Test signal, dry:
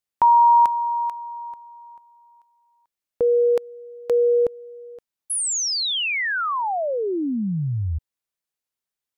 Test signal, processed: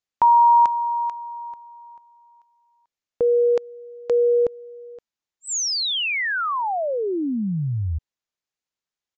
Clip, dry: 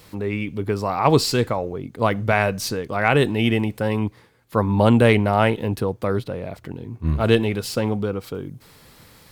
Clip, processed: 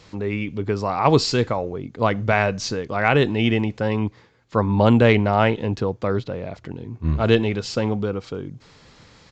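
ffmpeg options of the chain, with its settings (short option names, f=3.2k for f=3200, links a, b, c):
-af "aresample=16000,aresample=44100"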